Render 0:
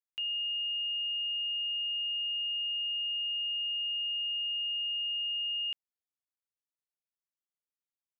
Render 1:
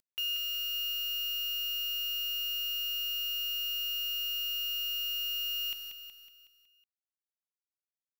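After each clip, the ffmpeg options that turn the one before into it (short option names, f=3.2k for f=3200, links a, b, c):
-af "acompressor=mode=upward:threshold=-52dB:ratio=2.5,acrusher=bits=7:dc=4:mix=0:aa=0.000001,aecho=1:1:185|370|555|740|925|1110:0.473|0.241|0.123|0.0628|0.032|0.0163"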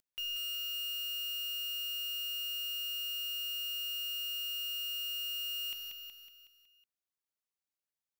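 -af "asoftclip=type=tanh:threshold=-35dB"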